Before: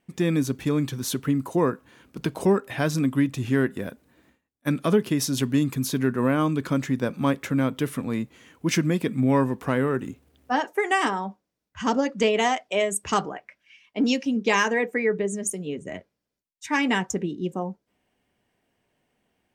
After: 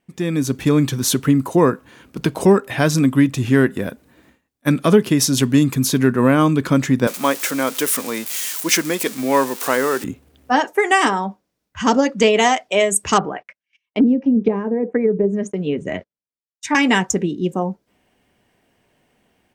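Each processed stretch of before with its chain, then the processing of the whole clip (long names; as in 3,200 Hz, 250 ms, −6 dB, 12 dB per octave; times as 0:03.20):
0:07.07–0:10.04: spike at every zero crossing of −26 dBFS + high-pass filter 440 Hz
0:13.17–0:16.75: treble cut that deepens with the level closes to 370 Hz, closed at −19.5 dBFS + noise gate −49 dBFS, range −30 dB
whole clip: dynamic equaliser 7,200 Hz, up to +3 dB, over −43 dBFS, Q 0.91; automatic gain control gain up to 10 dB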